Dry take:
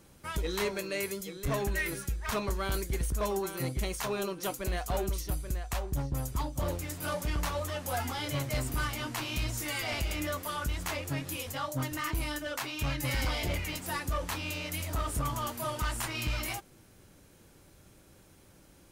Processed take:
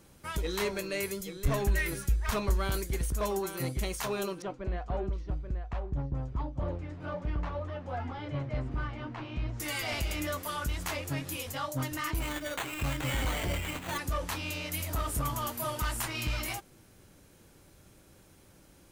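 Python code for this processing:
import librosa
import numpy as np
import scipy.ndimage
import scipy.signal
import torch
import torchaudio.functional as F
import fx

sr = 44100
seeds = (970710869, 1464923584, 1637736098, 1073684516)

y = fx.low_shelf(x, sr, hz=76.0, db=10.5, at=(0.68, 2.7))
y = fx.spacing_loss(y, sr, db_at_10k=41, at=(4.42, 9.6))
y = fx.sample_hold(y, sr, seeds[0], rate_hz=5200.0, jitter_pct=0, at=(12.19, 13.97), fade=0.02)
y = fx.peak_eq(y, sr, hz=13000.0, db=5.5, octaves=0.53, at=(14.73, 16.03))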